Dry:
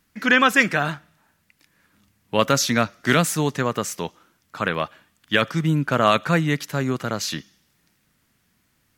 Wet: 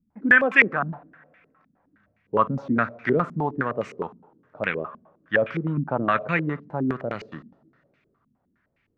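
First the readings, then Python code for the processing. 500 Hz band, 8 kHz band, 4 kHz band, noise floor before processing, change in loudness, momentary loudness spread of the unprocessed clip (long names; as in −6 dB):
−2.5 dB, below −30 dB, −17.0 dB, −67 dBFS, −2.0 dB, 12 LU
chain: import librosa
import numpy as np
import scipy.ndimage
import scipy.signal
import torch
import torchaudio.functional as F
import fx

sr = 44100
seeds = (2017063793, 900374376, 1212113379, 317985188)

y = fx.rev_double_slope(x, sr, seeds[0], early_s=0.82, late_s=3.4, knee_db=-20, drr_db=14.0)
y = fx.filter_held_lowpass(y, sr, hz=9.7, low_hz=220.0, high_hz=2300.0)
y = y * librosa.db_to_amplitude(-7.0)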